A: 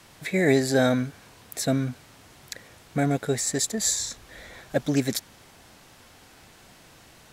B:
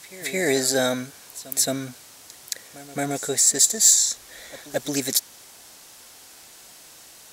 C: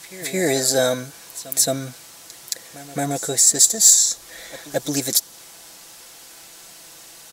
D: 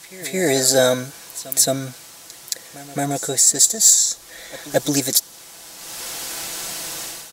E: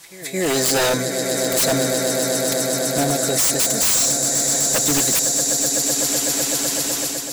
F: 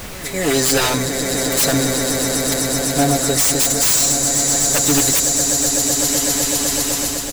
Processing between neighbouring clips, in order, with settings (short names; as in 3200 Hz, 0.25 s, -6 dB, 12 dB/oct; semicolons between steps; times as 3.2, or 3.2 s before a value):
tone controls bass -10 dB, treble +12 dB; soft clip -4 dBFS, distortion -23 dB; reverse echo 0.221 s -17 dB
dynamic EQ 2100 Hz, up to -5 dB, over -42 dBFS, Q 1.1; comb 6 ms, depth 44%; gain +3 dB
AGC gain up to 15 dB; gain -1 dB
swelling echo 0.126 s, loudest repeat 8, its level -13 dB; wavefolder -14 dBFS; AGC gain up to 4 dB; gain -2 dB
comb 7 ms, depth 82%; added noise pink -32 dBFS